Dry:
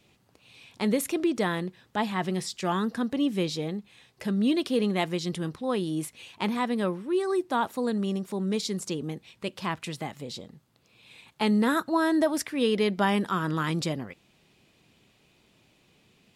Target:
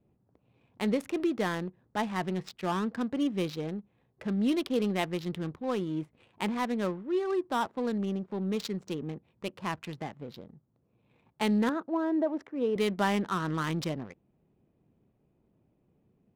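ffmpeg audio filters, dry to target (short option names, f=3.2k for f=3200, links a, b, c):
-filter_complex "[0:a]adynamicsmooth=sensitivity=7.5:basefreq=590,asettb=1/sr,asplit=3[a][b][c];[a]atrim=end=11.694[d];[b]atrim=start=11.69:end=12.76,asetpts=PTS-STARTPTS,afade=t=in:d=0.004:c=qsin,afade=t=out:st=1.066:d=0.004:c=qsin,bandpass=f=430:t=q:w=0.85:csg=0[e];[c]atrim=start=12.756[f];[d][e]acrossfade=d=0.004:c1=hsin:c2=qsin[g];[g][f]acrossfade=d=0.004:c1=qsin:c2=hsin,volume=-3dB"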